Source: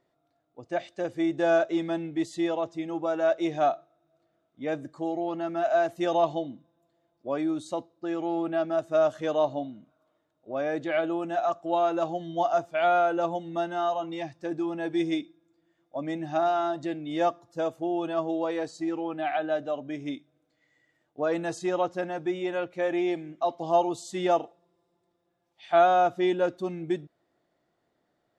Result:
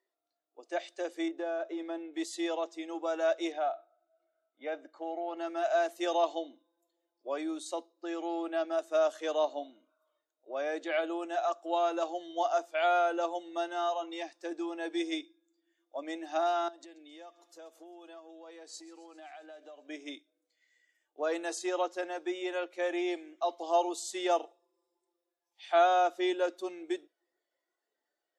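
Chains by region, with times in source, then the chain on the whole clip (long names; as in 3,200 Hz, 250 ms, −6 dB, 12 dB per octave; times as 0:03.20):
0:01.28–0:02.14: low-pass filter 1,200 Hz 6 dB per octave + downward compressor, threshold −26 dBFS
0:03.52–0:05.37: low-pass filter 2,800 Hz + comb filter 1.4 ms, depth 36% + downward compressor 2 to 1, threshold −27 dBFS
0:16.68–0:19.89: downward compressor 8 to 1, threshold −42 dBFS + delay with a high-pass on its return 133 ms, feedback 70%, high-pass 2,500 Hz, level −18 dB
whole clip: Butterworth high-pass 320 Hz 36 dB per octave; noise reduction from a noise print of the clip's start 10 dB; high-shelf EQ 3,200 Hz +10 dB; level −5 dB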